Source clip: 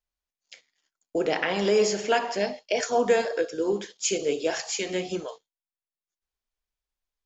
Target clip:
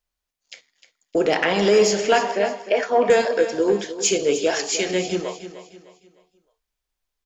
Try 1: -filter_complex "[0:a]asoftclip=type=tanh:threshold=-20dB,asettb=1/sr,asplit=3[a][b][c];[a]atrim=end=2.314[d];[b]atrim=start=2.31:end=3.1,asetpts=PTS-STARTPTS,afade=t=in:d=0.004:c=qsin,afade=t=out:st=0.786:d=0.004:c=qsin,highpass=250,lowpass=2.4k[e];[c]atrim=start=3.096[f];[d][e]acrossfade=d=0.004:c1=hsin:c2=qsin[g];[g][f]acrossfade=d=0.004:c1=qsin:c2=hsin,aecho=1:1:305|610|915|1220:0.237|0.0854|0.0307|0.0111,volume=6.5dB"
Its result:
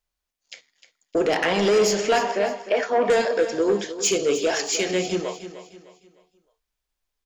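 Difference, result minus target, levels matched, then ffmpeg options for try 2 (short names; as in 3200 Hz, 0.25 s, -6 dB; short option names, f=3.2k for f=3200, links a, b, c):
soft clip: distortion +11 dB
-filter_complex "[0:a]asoftclip=type=tanh:threshold=-12dB,asettb=1/sr,asplit=3[a][b][c];[a]atrim=end=2.314[d];[b]atrim=start=2.31:end=3.1,asetpts=PTS-STARTPTS,afade=t=in:d=0.004:c=qsin,afade=t=out:st=0.786:d=0.004:c=qsin,highpass=250,lowpass=2.4k[e];[c]atrim=start=3.096[f];[d][e]acrossfade=d=0.004:c1=hsin:c2=qsin[g];[g][f]acrossfade=d=0.004:c1=qsin:c2=hsin,aecho=1:1:305|610|915|1220:0.237|0.0854|0.0307|0.0111,volume=6.5dB"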